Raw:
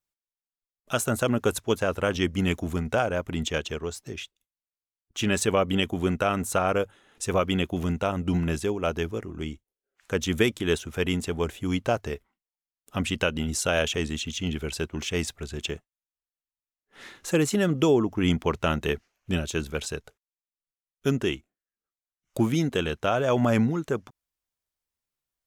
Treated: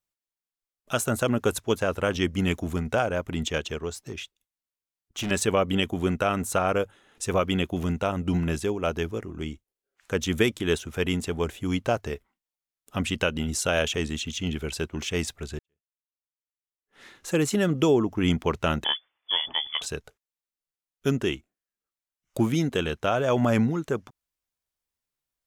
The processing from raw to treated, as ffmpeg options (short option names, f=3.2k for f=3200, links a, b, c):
-filter_complex "[0:a]asettb=1/sr,asplit=3[a][b][c];[a]atrim=end=3.974[d];[b]atrim=start=3.97:end=5.31,asetpts=PTS-STARTPTS,afade=t=in:d=0.004:c=qsin,afade=t=out:st=1.336:d=0.004:c=qsin,volume=27dB,asoftclip=hard,volume=-27dB[e];[c]atrim=start=5.306[f];[d][e]acrossfade=d=0.004:c1=hsin:c2=qsin[g];[g][f]acrossfade=d=0.004:c1=qsin:c2=hsin,asettb=1/sr,asplit=3[h][i][j];[h]atrim=end=18.844[k];[i]atrim=start=18.84:end=19.82,asetpts=PTS-STARTPTS,afade=t=in:d=0.004:c=qsin,afade=t=out:st=0.976:d=0.004:c=qsin,lowpass=f=3k:t=q:w=0.5098,lowpass=f=3k:t=q:w=0.6013,lowpass=f=3k:t=q:w=0.9,lowpass=f=3k:t=q:w=2.563,afreqshift=-3500[l];[j]atrim=start=19.816[m];[k][l]acrossfade=d=0.004:c1=hsin:c2=qsin[n];[n][m]acrossfade=d=0.004:c1=qsin:c2=hsin,asplit=2[o][p];[o]atrim=end=15.59,asetpts=PTS-STARTPTS,afade=t=out:st=15.586:d=0.004:c=hsin[q];[p]atrim=start=15.59,asetpts=PTS-STARTPTS,afade=t=in:d=1.9:c=qua[r];[q][r]concat=n=2:v=0:a=1"